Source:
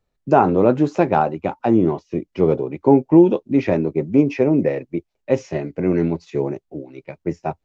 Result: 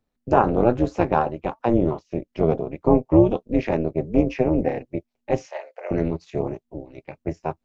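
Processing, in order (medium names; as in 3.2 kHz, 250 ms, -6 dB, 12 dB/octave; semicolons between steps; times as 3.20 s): AM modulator 240 Hz, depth 80%; 5.47–5.91 s: elliptic high-pass 540 Hz, stop band 60 dB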